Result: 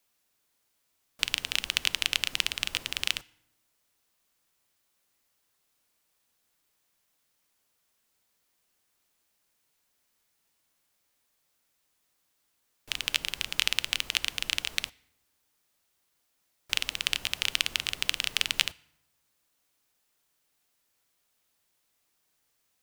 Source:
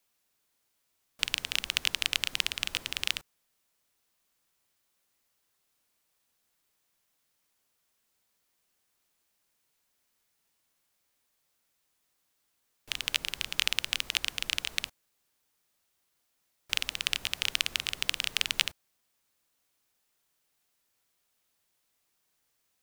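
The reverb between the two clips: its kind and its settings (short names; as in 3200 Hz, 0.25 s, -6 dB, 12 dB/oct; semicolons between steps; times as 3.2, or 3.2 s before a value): FDN reverb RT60 0.87 s, low-frequency decay 1.4×, high-frequency decay 0.65×, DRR 20 dB; gain +1.5 dB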